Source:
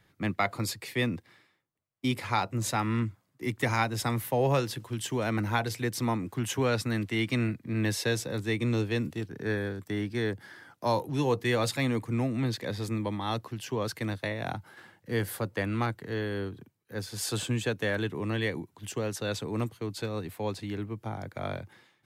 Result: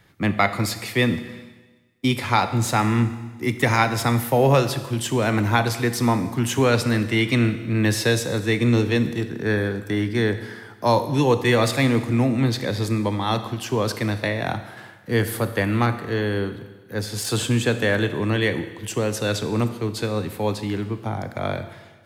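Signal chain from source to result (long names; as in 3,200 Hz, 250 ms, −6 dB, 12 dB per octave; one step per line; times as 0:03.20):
de-essing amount 60%
four-comb reverb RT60 1.3 s, combs from 26 ms, DRR 10 dB
level +8.5 dB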